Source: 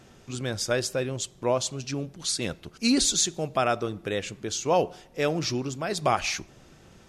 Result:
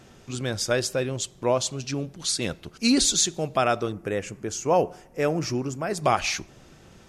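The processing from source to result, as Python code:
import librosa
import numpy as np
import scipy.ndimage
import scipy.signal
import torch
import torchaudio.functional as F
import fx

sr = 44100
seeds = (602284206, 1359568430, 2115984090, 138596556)

y = fx.peak_eq(x, sr, hz=3700.0, db=-13.5, octaves=0.73, at=(3.92, 6.04))
y = y * librosa.db_to_amplitude(2.0)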